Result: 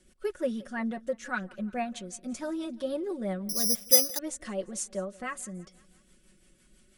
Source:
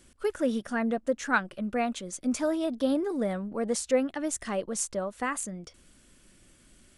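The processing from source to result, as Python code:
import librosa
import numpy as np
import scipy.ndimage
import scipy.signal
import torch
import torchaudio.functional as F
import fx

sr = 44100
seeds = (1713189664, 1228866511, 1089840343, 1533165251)

y = x + 0.67 * np.pad(x, (int(5.4 * sr / 1000.0), 0))[:len(x)]
y = fx.rotary(y, sr, hz=6.0)
y = fx.echo_feedback(y, sr, ms=173, feedback_pct=56, wet_db=-23)
y = fx.resample_bad(y, sr, factor=8, down='filtered', up='zero_stuff', at=(3.49, 4.19))
y = F.gain(torch.from_numpy(y), -4.0).numpy()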